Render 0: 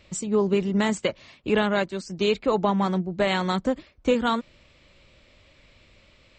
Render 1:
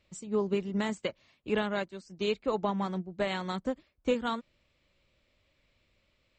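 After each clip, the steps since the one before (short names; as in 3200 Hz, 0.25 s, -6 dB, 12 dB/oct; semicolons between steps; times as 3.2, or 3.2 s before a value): upward expander 1.5:1, over -36 dBFS; gain -6 dB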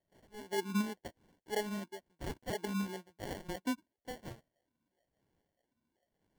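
wah 0.99 Hz 220–2700 Hz, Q 3.6; sample-and-hold 35×; gain +1.5 dB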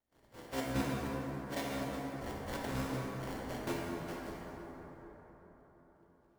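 cycle switcher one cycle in 3, inverted; plate-style reverb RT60 4.8 s, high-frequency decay 0.4×, DRR -4.5 dB; gain -5.5 dB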